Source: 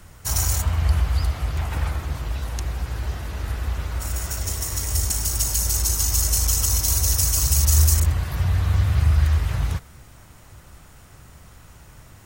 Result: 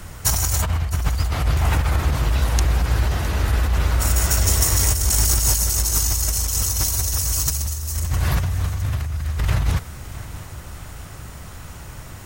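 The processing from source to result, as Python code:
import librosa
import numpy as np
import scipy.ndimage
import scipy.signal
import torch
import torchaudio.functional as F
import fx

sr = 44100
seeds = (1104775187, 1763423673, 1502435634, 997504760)

p1 = fx.over_compress(x, sr, threshold_db=-25.0, ratio=-1.0)
p2 = p1 + fx.echo_feedback(p1, sr, ms=660, feedback_pct=51, wet_db=-16.5, dry=0)
y = p2 * librosa.db_to_amplitude(5.5)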